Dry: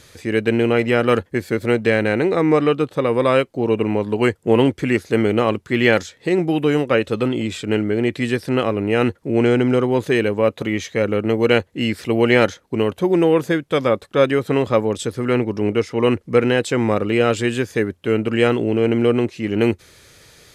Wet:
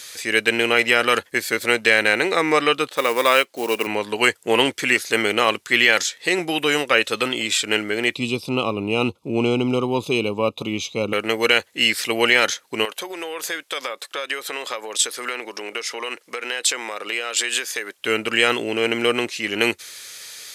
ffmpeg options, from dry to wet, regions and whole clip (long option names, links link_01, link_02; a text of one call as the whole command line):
ffmpeg -i in.wav -filter_complex "[0:a]asettb=1/sr,asplit=3[link_01][link_02][link_03];[link_01]atrim=end=2.894[link_04];[link_02]atrim=start=2.89:end=3.87,asetpts=PTS-STARTPTS,afade=type=in:duration=0.004:curve=qsin,afade=type=out:start_time=0.976:duration=0.004:curve=qsin,highpass=200,highshelf=frequency=7000:gain=-6.5,acrusher=bits=8:mode=log:mix=0:aa=0.000001[link_05];[link_03]atrim=start=3.866[link_06];[link_04][link_05]acrossfade=duration=0.004:curve1=hsin:curve2=qsin[link_07];[link_07][link_06]acrossfade=duration=0.004:curve1=qsin:curve2=hsin,asettb=1/sr,asplit=3[link_08][link_09][link_10];[link_08]atrim=end=8.154[link_11];[link_09]atrim=start=8.15:end=11.13,asetpts=PTS-STARTPTS,afade=type=in:duration=0.004:curve=qsin,afade=type=out:start_time=2.976:duration=0.004:curve=qsin,asuperstop=centerf=1700:order=4:qfactor=0.99,bass=frequency=250:gain=8,treble=frequency=4000:gain=-14,aecho=1:1:0.8:0.33,atrim=end_sample=131418[link_12];[link_10]atrim=start=11.126[link_13];[link_11][link_12]acrossfade=duration=0.004:curve1=hsin:curve2=qsin[link_14];[link_14][link_13]acrossfade=duration=0.004:curve1=qsin:curve2=hsin,asettb=1/sr,asplit=3[link_15][link_16][link_17];[link_15]atrim=end=12.854[link_18];[link_16]atrim=start=12.85:end=17.99,asetpts=PTS-STARTPTS,afade=type=in:duration=0.004:curve=qsin,afade=type=out:start_time=5.136:duration=0.004:curve=qsin,highpass=400,acompressor=threshold=-24dB:ratio=12:attack=3.2:release=140:knee=1:detection=peak[link_19];[link_17]atrim=start=17.986[link_20];[link_18][link_19]acrossfade=duration=0.004:curve1=hsin:curve2=qsin[link_21];[link_21][link_20]acrossfade=duration=0.004:curve1=qsin:curve2=hsin,lowpass=frequency=3700:poles=1,aderivative,alimiter=level_in=21dB:limit=-1dB:release=50:level=0:latency=1,volume=-1dB" out.wav